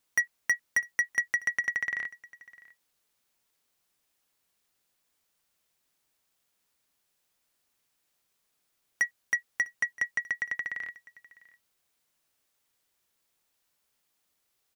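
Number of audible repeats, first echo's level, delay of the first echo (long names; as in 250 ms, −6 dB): 1, −22.0 dB, 652 ms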